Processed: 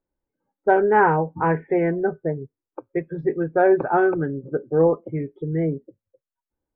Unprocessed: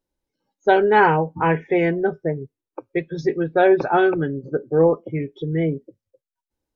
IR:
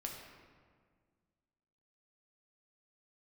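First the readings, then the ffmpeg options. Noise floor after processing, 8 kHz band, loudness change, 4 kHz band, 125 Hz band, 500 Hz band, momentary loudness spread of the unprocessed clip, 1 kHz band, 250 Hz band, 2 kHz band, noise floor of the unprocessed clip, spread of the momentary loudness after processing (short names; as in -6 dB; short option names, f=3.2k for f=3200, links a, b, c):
under -85 dBFS, n/a, -1.5 dB, under -20 dB, -1.5 dB, -1.5 dB, 12 LU, -1.5 dB, -1.5 dB, -3.0 dB, under -85 dBFS, 12 LU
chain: -af "lowpass=f=1.8k:w=0.5412,lowpass=f=1.8k:w=1.3066,volume=-1.5dB"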